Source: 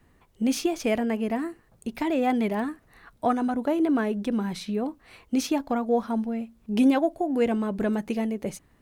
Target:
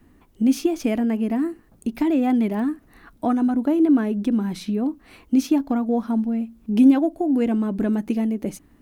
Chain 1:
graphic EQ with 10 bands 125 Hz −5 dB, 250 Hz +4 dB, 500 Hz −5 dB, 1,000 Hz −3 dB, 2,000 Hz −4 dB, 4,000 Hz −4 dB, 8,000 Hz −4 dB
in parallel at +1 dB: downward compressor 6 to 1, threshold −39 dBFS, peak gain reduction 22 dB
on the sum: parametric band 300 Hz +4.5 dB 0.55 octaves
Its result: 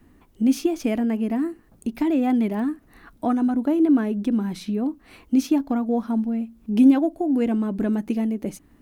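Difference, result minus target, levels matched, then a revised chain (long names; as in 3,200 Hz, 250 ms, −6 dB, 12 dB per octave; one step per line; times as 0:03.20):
downward compressor: peak gain reduction +5 dB
graphic EQ with 10 bands 125 Hz −5 dB, 250 Hz +4 dB, 500 Hz −5 dB, 1,000 Hz −3 dB, 2,000 Hz −4 dB, 4,000 Hz −4 dB, 8,000 Hz −4 dB
in parallel at +1 dB: downward compressor 6 to 1, threshold −33 dBFS, peak gain reduction 17 dB
on the sum: parametric band 300 Hz +4.5 dB 0.55 octaves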